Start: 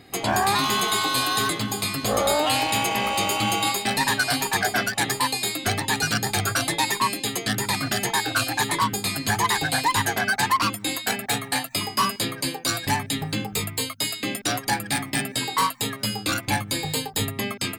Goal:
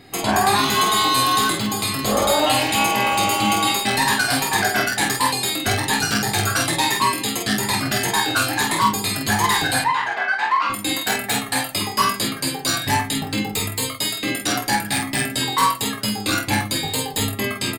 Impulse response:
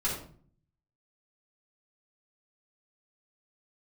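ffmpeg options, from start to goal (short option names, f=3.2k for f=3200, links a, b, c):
-filter_complex "[0:a]asettb=1/sr,asplit=3[a][b][c];[a]atrim=end=9.794[d];[b]atrim=start=9.79:end=10.7,asetpts=PTS-STARTPTS,afade=t=in:d=0.004:c=qsin,afade=t=out:st=0.906:d=0.004:c=qsin,highpass=700,lowpass=2.3k[e];[c]atrim=start=10.696[f];[d][e]acrossfade=d=0.004:c1=hsin:c2=qsin[g];[g][f]acrossfade=d=0.004:c1=qsin:c2=hsin,aecho=1:1:23|48:0.473|0.596,asplit=2[h][i];[1:a]atrim=start_sample=2205[j];[i][j]afir=irnorm=-1:irlink=0,volume=-18dB[k];[h][k]amix=inputs=2:normalize=0,volume=1dB"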